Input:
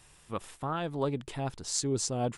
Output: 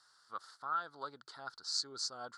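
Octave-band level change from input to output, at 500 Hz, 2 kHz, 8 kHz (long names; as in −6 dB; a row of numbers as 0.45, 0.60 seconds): −18.0, −2.0, −10.5 decibels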